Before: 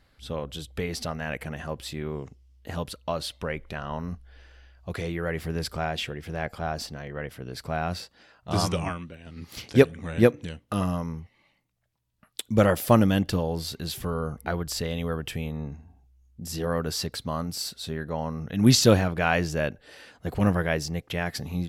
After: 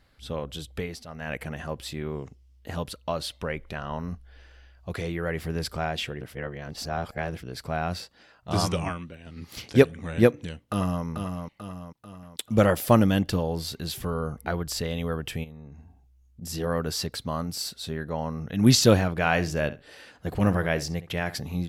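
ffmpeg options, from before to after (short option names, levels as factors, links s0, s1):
-filter_complex "[0:a]asplit=2[s0][s1];[s1]afade=t=in:st=10.61:d=0.01,afade=t=out:st=11.04:d=0.01,aecho=0:1:440|880|1320|1760|2200|2640:0.501187|0.250594|0.125297|0.0626484|0.0313242|0.0156621[s2];[s0][s2]amix=inputs=2:normalize=0,asplit=3[s3][s4][s5];[s3]afade=t=out:st=15.43:d=0.02[s6];[s4]acompressor=threshold=0.01:ratio=12:attack=3.2:release=140:knee=1:detection=peak,afade=t=in:st=15.43:d=0.02,afade=t=out:st=16.41:d=0.02[s7];[s5]afade=t=in:st=16.41:d=0.02[s8];[s6][s7][s8]amix=inputs=3:normalize=0,asettb=1/sr,asplit=3[s9][s10][s11];[s9]atrim=end=19.154[s12];[s10]atrim=start=19.15:end=21.35,asetpts=PTS-STARTPTS,afade=t=in:d=0.004:c=qsin,afade=t=out:st=2.196:d=0.004:c=qsin,asplit=2[s13][s14];[s14]adelay=66,lowpass=f=4700:p=1,volume=0.178,asplit=2[s15][s16];[s16]adelay=66,lowpass=f=4700:p=1,volume=0.16[s17];[s13][s15][s17]amix=inputs=3:normalize=0,atrim=end_sample=97020[s18];[s11]atrim=start=21.346[s19];[s12][s18]acrossfade=d=0.004:c1=hsin:c2=qsin[s20];[s20][s19]acrossfade=d=0.004:c1=qsin:c2=hsin,asplit=5[s21][s22][s23][s24][s25];[s21]atrim=end=1.04,asetpts=PTS-STARTPTS,afade=t=out:st=0.75:d=0.29:silence=0.211349[s26];[s22]atrim=start=1.04:end=1.05,asetpts=PTS-STARTPTS,volume=0.211[s27];[s23]atrim=start=1.05:end=6.212,asetpts=PTS-STARTPTS,afade=t=in:d=0.29:silence=0.211349[s28];[s24]atrim=start=6.208:end=7.432,asetpts=PTS-STARTPTS,areverse[s29];[s25]atrim=start=7.428[s30];[s26][s27][s28]concat=n=3:v=0:a=1[s31];[s31][s29]acrossfade=d=0.004:c1=hsin:c2=hsin[s32];[s32][s30]acrossfade=d=0.004:c1=hsin:c2=hsin"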